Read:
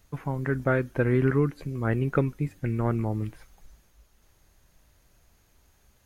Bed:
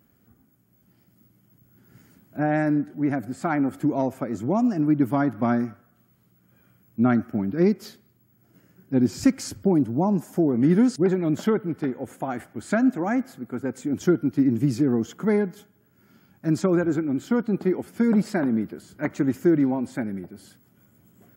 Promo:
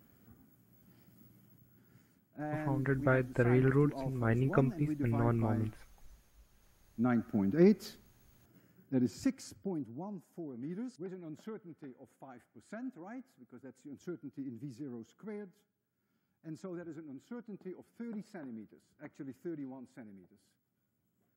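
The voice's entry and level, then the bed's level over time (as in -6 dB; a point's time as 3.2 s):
2.40 s, -5.0 dB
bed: 1.41 s -1.5 dB
2.34 s -16.5 dB
6.74 s -16.5 dB
7.46 s -5 dB
8.41 s -5 dB
10.22 s -23 dB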